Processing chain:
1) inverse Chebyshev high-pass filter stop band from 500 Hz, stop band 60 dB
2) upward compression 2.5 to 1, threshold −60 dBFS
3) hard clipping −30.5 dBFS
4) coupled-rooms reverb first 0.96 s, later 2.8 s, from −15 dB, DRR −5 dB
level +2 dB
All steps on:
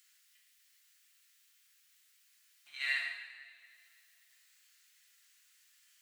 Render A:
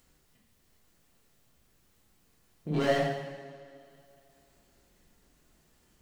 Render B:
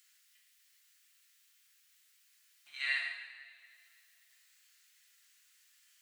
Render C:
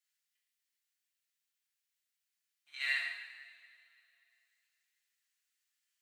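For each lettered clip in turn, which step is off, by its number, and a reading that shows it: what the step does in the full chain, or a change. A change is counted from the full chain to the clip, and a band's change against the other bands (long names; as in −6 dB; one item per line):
1, 500 Hz band +35.0 dB
3, distortion level −27 dB
2, 8 kHz band −3.5 dB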